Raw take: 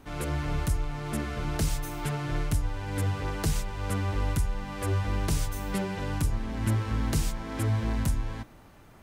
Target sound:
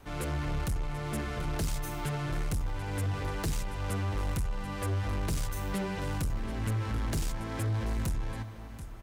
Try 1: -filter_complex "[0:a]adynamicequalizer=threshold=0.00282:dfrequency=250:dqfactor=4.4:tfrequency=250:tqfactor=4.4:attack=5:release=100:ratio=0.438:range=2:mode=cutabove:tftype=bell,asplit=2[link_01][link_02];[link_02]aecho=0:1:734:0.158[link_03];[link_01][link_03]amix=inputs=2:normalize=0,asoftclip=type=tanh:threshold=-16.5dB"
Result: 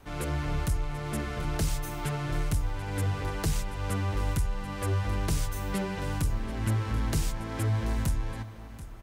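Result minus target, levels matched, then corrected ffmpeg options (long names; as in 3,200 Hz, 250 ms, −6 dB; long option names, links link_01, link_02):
soft clipping: distortion −13 dB
-filter_complex "[0:a]adynamicequalizer=threshold=0.00282:dfrequency=250:dqfactor=4.4:tfrequency=250:tqfactor=4.4:attack=5:release=100:ratio=0.438:range=2:mode=cutabove:tftype=bell,asplit=2[link_01][link_02];[link_02]aecho=0:1:734:0.158[link_03];[link_01][link_03]amix=inputs=2:normalize=0,asoftclip=type=tanh:threshold=-26dB"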